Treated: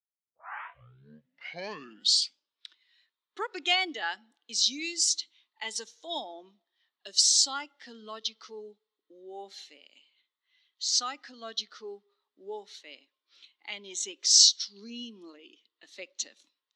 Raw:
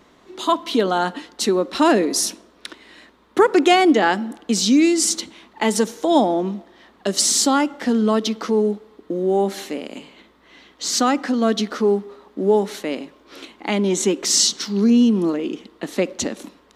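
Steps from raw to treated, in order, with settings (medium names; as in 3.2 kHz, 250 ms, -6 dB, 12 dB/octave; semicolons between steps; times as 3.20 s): tape start-up on the opening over 2.73 s; band-pass filter 4.5 kHz, Q 1.1; spectral contrast expander 1.5:1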